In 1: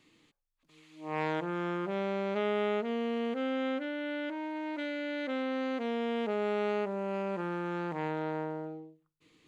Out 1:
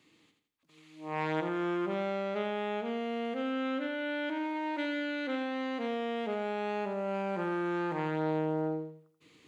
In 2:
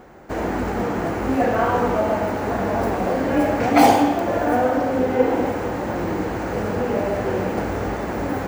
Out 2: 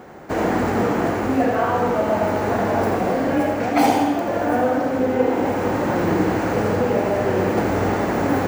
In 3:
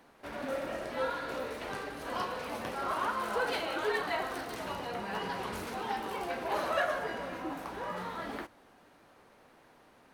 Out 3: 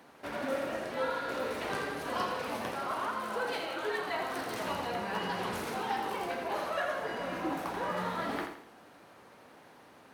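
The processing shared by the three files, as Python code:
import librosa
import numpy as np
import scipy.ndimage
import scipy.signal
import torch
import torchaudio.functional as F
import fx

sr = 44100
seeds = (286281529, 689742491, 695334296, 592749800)

y = scipy.signal.sosfilt(scipy.signal.butter(2, 83.0, 'highpass', fs=sr, output='sos'), x)
y = fx.rider(y, sr, range_db=4, speed_s=0.5)
y = fx.echo_feedback(y, sr, ms=83, feedback_pct=37, wet_db=-7.5)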